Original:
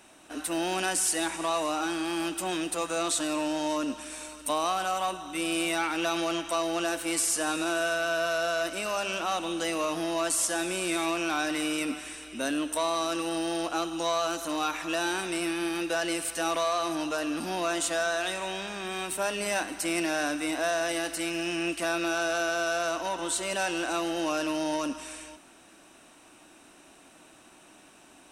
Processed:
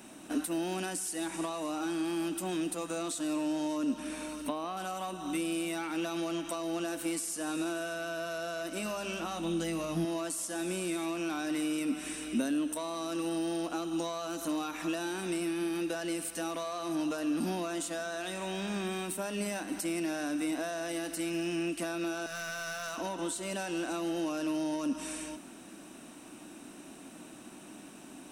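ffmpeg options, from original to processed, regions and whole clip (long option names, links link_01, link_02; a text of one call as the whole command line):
ffmpeg -i in.wav -filter_complex "[0:a]asettb=1/sr,asplit=3[link_01][link_02][link_03];[link_01]atrim=end=3.944[link_04];[link_02]atrim=start=3.94:end=4.77,asetpts=PTS-STARTPTS,afade=type=in:duration=0.004:curve=qsin,afade=type=out:start_time=0.826:duration=0.004:curve=qsin,acrossover=split=3500[link_05][link_06];[link_06]acompressor=threshold=-47dB:ratio=4:attack=1:release=60[link_07];[link_05][link_07]amix=inputs=2:normalize=0,equalizer=frequency=7600:width_type=o:width=0.27:gain=-5.5[link_08];[link_03]atrim=start=4.766[link_09];[link_04][link_08]acrossfade=duration=0.004:curve1=hsin:curve2=qsin[link_10];[link_10][link_09]acrossfade=duration=0.004:curve1=qsin:curve2=hsin,asettb=1/sr,asplit=3[link_11][link_12][link_13];[link_11]atrim=end=8.754[link_14];[link_12]atrim=start=8.75:end=10.05,asetpts=PTS-STARTPTS,afade=type=in:duration=0.004:curve=qsin,afade=type=out:start_time=1.296:duration=0.004:curve=qsin,asubboost=boost=8:cutoff=210,asplit=2[link_15][link_16];[link_16]adelay=18,volume=-8dB[link_17];[link_15][link_17]amix=inputs=2:normalize=0,atrim=end_sample=57330[link_18];[link_13]atrim=start=10.046[link_19];[link_14][link_18]acrossfade=duration=0.004:curve1=hsin:curve2=qsin[link_20];[link_20][link_19]acrossfade=duration=0.004:curve1=qsin:curve2=hsin,asettb=1/sr,asplit=3[link_21][link_22][link_23];[link_21]atrim=end=22.264[link_24];[link_22]atrim=start=22.26:end=22.98,asetpts=PTS-STARTPTS,afade=type=in:duration=0.004:curve=qsin,afade=type=out:start_time=0.716:duration=0.004:curve=qsin,highpass=1000,aeval=exprs='clip(val(0),-1,0.0299)':channel_layout=same[link_25];[link_23]atrim=start=22.976[link_26];[link_24][link_25]acrossfade=duration=0.004:curve1=hsin:curve2=qsin[link_27];[link_27][link_26]acrossfade=duration=0.004:curve1=qsin:curve2=hsin,highshelf=frequency=10000:gain=8.5,acompressor=threshold=-36dB:ratio=6,equalizer=frequency=220:width_type=o:width=1.5:gain=12.5" out.wav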